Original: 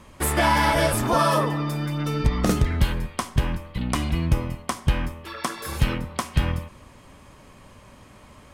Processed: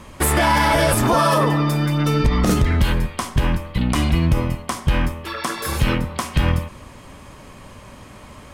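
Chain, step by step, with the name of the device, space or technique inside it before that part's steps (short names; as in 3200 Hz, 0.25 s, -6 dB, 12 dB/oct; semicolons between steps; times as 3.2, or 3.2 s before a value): limiter into clipper (limiter -15 dBFS, peak gain reduction 6.5 dB; hard clip -16.5 dBFS, distortion -31 dB); gain +7.5 dB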